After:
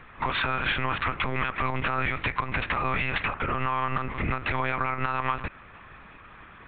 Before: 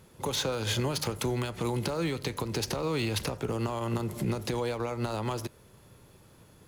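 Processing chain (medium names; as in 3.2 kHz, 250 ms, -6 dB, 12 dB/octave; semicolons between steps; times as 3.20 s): high-order bell 1.6 kHz +16 dB; compression, threshold -26 dBFS, peak gain reduction 7.5 dB; monotone LPC vocoder at 8 kHz 130 Hz; trim +3 dB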